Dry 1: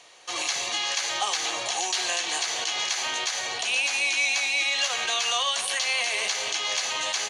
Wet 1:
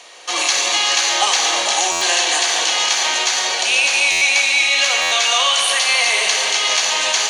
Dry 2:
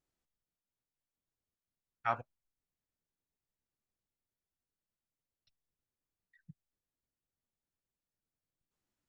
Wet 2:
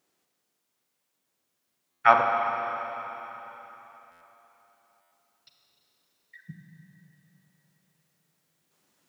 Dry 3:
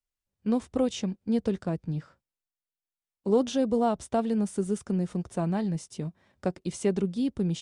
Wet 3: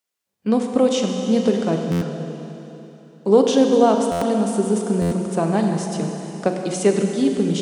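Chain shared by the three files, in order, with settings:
Schroeder reverb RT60 3.5 s, combs from 33 ms, DRR 3 dB; in parallel at 0 dB: gain riding within 4 dB 2 s; on the sum: high-pass 210 Hz 12 dB/octave; hum notches 60/120/180/240/300/360 Hz; buffer glitch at 1.91/4.11/5.01 s, samples 512, times 8; peak normalisation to -2 dBFS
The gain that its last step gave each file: +2.5 dB, +10.0 dB, +3.5 dB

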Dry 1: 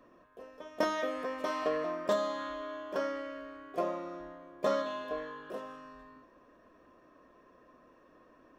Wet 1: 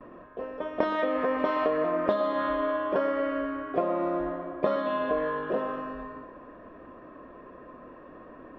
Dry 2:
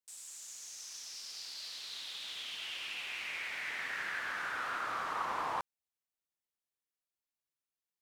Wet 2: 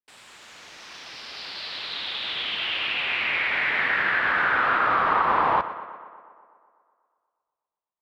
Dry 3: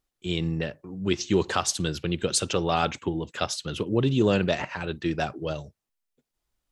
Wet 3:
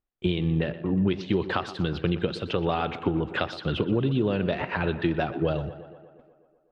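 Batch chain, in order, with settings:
gate with hold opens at -57 dBFS; dynamic bell 4.1 kHz, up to +7 dB, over -47 dBFS, Q 1.2; compression 12:1, threshold -36 dBFS; distance through air 460 m; tape echo 122 ms, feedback 71%, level -13 dB, low-pass 3.4 kHz; peak normalisation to -9 dBFS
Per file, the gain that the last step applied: +14.5 dB, +21.5 dB, +16.0 dB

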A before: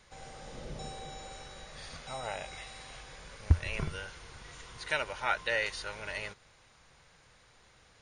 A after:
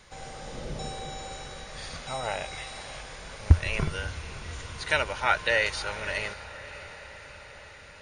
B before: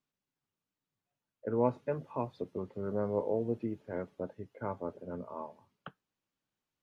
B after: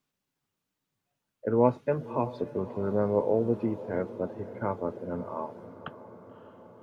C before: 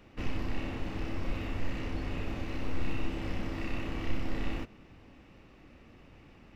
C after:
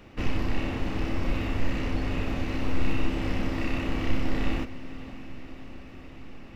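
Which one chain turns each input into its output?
echo that smears into a reverb 586 ms, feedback 67%, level -15.5 dB; trim +6.5 dB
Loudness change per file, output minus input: +6.0 LU, +6.5 LU, +7.0 LU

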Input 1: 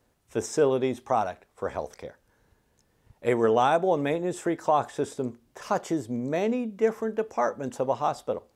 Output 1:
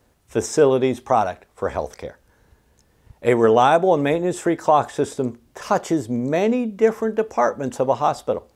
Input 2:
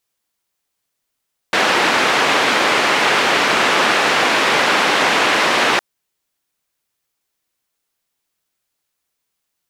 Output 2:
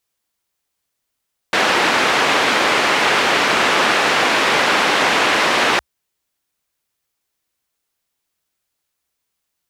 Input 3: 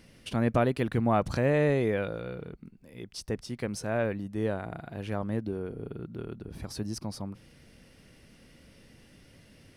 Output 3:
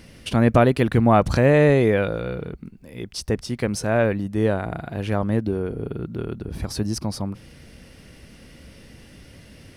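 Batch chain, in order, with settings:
peaking EQ 64 Hz +6.5 dB 0.64 oct; peak normalisation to -3 dBFS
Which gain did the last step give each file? +7.0 dB, -0.5 dB, +9.0 dB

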